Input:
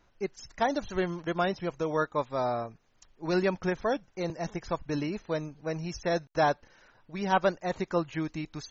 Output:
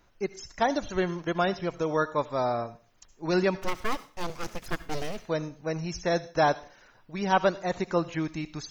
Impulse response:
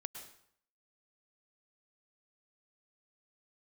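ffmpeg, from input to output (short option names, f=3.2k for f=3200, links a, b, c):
-filter_complex "[0:a]asplit=3[a][b][c];[a]afade=t=out:st=3.61:d=0.02[d];[b]aeval=exprs='abs(val(0))':c=same,afade=t=in:st=3.61:d=0.02,afade=t=out:st=5.16:d=0.02[e];[c]afade=t=in:st=5.16:d=0.02[f];[d][e][f]amix=inputs=3:normalize=0,asplit=2[g][h];[h]aemphasis=mode=production:type=75fm[i];[1:a]atrim=start_sample=2205,asetrate=70560,aresample=44100[j];[i][j]afir=irnorm=-1:irlink=0,volume=-3dB[k];[g][k]amix=inputs=2:normalize=0"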